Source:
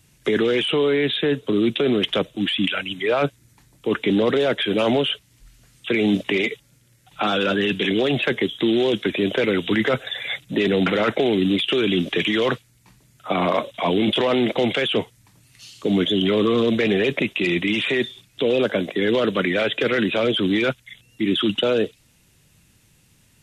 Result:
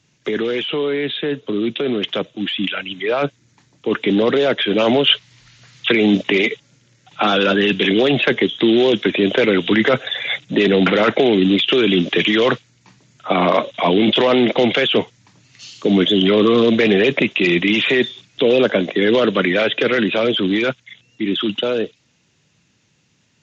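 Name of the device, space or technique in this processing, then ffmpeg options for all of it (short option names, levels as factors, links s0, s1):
Bluetooth headset: -filter_complex "[0:a]asettb=1/sr,asplit=3[s0][s1][s2];[s0]atrim=end=5.074[s3];[s1]atrim=start=5.07:end=5.92,asetpts=PTS-STARTPTS,afade=t=in:d=0.004:c=qsin,afade=t=out:st=0.846:d=0.004:c=qsin,equalizer=f=125:t=o:w=1:g=7,equalizer=f=250:t=o:w=1:g=-4,equalizer=f=1000:t=o:w=1:g=5,equalizer=f=2000:t=o:w=1:g=6,equalizer=f=4000:t=o:w=1:g=7[s4];[s2]atrim=start=5.916[s5];[s3][s4]acrossfade=d=0.004:c1=hsin:c2=qsin[s6];[s6][s5]acrossfade=d=0.004:c1=qsin:c2=hsin,highpass=130,dynaudnorm=f=370:g=21:m=5.01,aresample=16000,aresample=44100,volume=0.891" -ar 16000 -c:a sbc -b:a 64k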